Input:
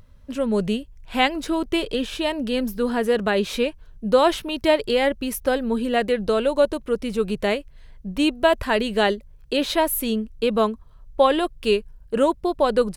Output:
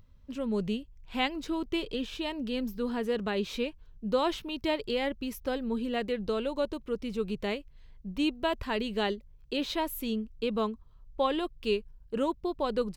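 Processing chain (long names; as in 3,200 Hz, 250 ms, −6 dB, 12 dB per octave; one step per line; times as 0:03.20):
graphic EQ with 15 bands 630 Hz −6 dB, 1,600 Hz −5 dB, 10,000 Hz −11 dB
level −7.5 dB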